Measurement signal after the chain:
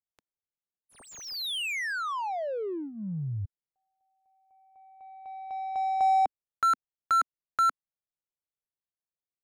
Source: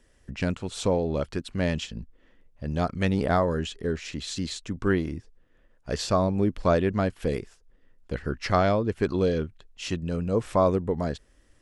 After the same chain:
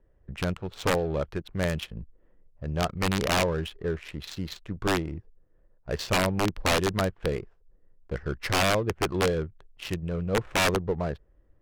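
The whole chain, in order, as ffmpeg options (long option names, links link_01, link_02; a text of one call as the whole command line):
ffmpeg -i in.wav -af "equalizer=frequency=250:width_type=o:width=0.33:gain=-12,aeval=exprs='(mod(6.68*val(0)+1,2)-1)/6.68':channel_layout=same,adynamicsmooth=sensitivity=7.5:basefreq=860" out.wav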